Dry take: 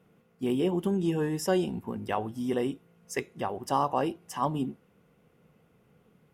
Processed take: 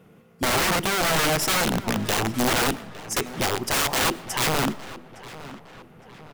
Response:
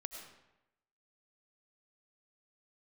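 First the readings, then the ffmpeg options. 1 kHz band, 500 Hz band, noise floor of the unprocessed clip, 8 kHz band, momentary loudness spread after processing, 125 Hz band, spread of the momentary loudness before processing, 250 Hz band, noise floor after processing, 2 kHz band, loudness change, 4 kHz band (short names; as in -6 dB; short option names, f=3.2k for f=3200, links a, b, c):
+6.0 dB, +2.5 dB, -65 dBFS, +18.0 dB, 19 LU, +5.0 dB, 9 LU, +1.5 dB, -53 dBFS, +17.0 dB, +7.5 dB, +18.5 dB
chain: -filter_complex "[0:a]aeval=exprs='(mod(23.7*val(0)+1,2)-1)/23.7':c=same,asplit=2[a][b];[b]adelay=861,lowpass=f=3.5k:p=1,volume=-16dB,asplit=2[c][d];[d]adelay=861,lowpass=f=3.5k:p=1,volume=0.51,asplit=2[e][f];[f]adelay=861,lowpass=f=3.5k:p=1,volume=0.51,asplit=2[g][h];[h]adelay=861,lowpass=f=3.5k:p=1,volume=0.51,asplit=2[i][j];[j]adelay=861,lowpass=f=3.5k:p=1,volume=0.51[k];[a][c][e][g][i][k]amix=inputs=6:normalize=0,asplit=2[l][m];[1:a]atrim=start_sample=2205[n];[m][n]afir=irnorm=-1:irlink=0,volume=-11.5dB[o];[l][o]amix=inputs=2:normalize=0,volume=9dB"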